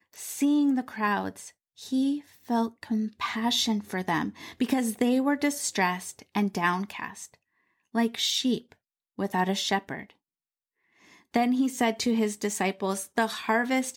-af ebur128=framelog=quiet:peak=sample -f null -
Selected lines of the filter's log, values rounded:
Integrated loudness:
  I:         -27.6 LUFS
  Threshold: -38.2 LUFS
Loudness range:
  LRA:         2.6 LU
  Threshold: -48.7 LUFS
  LRA low:   -29.9 LUFS
  LRA high:  -27.2 LUFS
Sample peak:
  Peak:      -10.0 dBFS